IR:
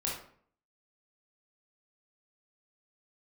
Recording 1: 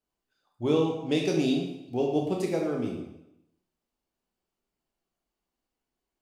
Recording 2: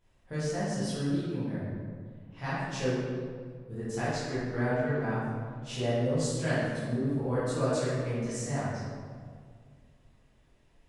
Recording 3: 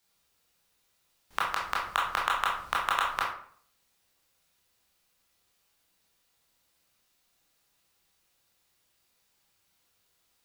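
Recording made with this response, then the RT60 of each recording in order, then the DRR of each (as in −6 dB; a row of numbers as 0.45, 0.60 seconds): 3; 0.85, 2.0, 0.55 seconds; 0.0, −12.5, −4.5 decibels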